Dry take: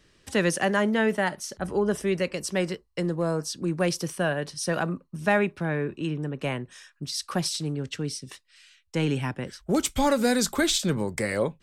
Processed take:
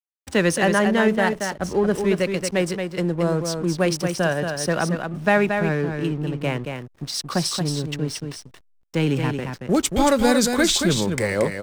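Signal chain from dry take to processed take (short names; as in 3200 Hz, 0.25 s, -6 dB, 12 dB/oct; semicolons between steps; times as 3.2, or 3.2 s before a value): backlash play -36 dBFS; echo 0.227 s -6 dB; gain +4.5 dB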